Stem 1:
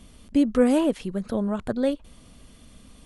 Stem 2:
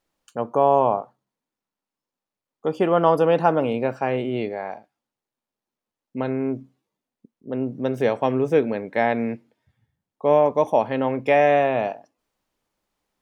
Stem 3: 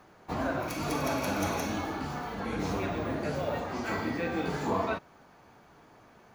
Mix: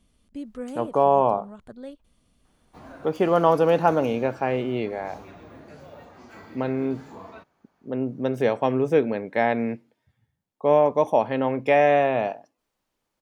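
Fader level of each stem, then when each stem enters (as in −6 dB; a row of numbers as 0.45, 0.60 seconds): −15.5, −1.0, −13.0 decibels; 0.00, 0.40, 2.45 seconds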